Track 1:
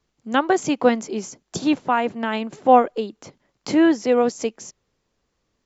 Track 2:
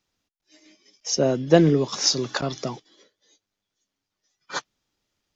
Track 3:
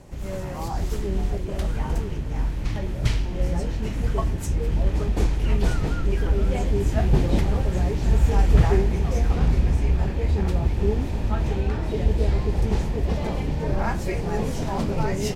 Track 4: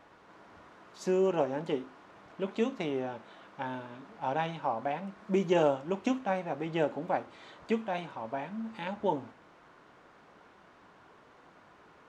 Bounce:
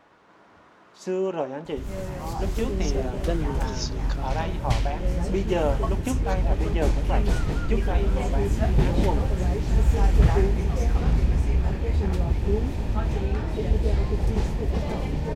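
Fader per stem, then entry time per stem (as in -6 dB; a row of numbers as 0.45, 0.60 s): off, -13.0 dB, -1.5 dB, +1.0 dB; off, 1.75 s, 1.65 s, 0.00 s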